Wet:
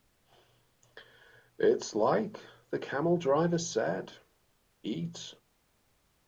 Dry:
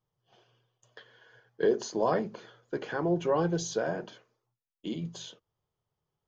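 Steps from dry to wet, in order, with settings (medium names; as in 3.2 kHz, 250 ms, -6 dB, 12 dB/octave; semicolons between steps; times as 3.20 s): added noise pink -71 dBFS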